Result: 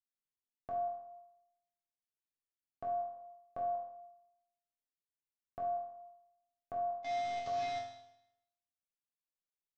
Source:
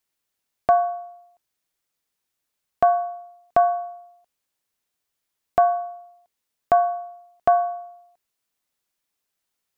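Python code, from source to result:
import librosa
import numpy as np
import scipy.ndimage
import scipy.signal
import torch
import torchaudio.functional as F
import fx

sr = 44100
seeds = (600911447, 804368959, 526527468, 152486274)

y = fx.delta_mod(x, sr, bps=32000, step_db=-19.0, at=(7.03, 7.8))
y = fx.low_shelf(y, sr, hz=400.0, db=11.0)
y = fx.level_steps(y, sr, step_db=23)
y = fx.resonator_bank(y, sr, root=41, chord='major', decay_s=0.82)
y = fx.small_body(y, sr, hz=(540.0, 1000.0), ring_ms=45, db=6, at=(3.15, 3.97))
y = F.gain(torch.from_numpy(y), 3.5).numpy()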